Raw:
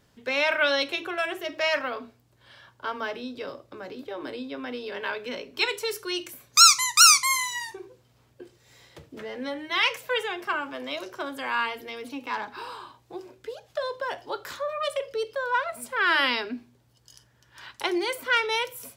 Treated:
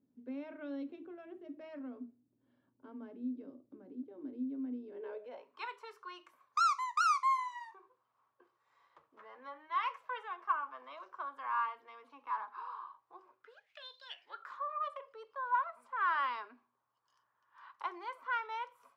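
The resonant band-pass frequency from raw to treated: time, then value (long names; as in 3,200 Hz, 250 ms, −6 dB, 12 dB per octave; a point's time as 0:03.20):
resonant band-pass, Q 6.4
0:04.84 260 Hz
0:05.53 1,100 Hz
0:13.38 1,100 Hz
0:14.01 4,300 Hz
0:14.51 1,100 Hz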